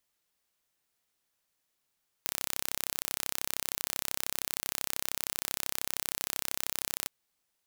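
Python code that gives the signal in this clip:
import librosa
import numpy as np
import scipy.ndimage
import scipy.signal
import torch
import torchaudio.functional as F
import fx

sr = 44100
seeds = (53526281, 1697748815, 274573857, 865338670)

y = 10.0 ** (-4.5 / 20.0) * (np.mod(np.arange(round(4.82 * sr)), round(sr / 32.9)) == 0)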